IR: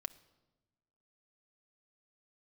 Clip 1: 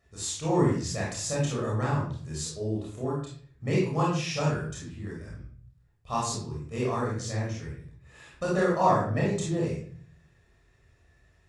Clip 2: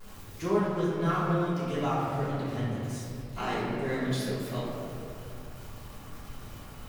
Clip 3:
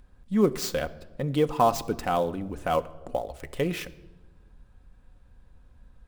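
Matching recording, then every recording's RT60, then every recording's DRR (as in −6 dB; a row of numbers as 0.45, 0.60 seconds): 3; 0.50 s, 2.5 s, non-exponential decay; −5.0, −10.5, 8.0 decibels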